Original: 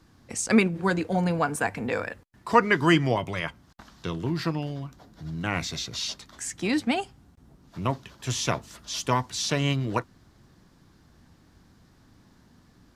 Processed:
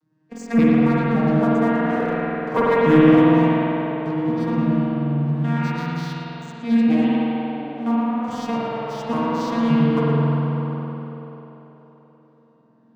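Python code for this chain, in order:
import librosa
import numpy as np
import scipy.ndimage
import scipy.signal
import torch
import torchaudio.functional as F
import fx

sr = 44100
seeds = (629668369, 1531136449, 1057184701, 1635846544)

p1 = fx.vocoder_arp(x, sr, chord='bare fifth', root=51, every_ms=285)
p2 = fx.leveller(p1, sr, passes=2)
p3 = p2 + fx.echo_tape(p2, sr, ms=114, feedback_pct=86, wet_db=-4.5, lp_hz=3500.0, drive_db=8.0, wow_cents=40, dry=0)
p4 = fx.rev_spring(p3, sr, rt60_s=2.9, pass_ms=(48,), chirp_ms=50, drr_db=-5.5)
y = p4 * 10.0 ** (-5.0 / 20.0)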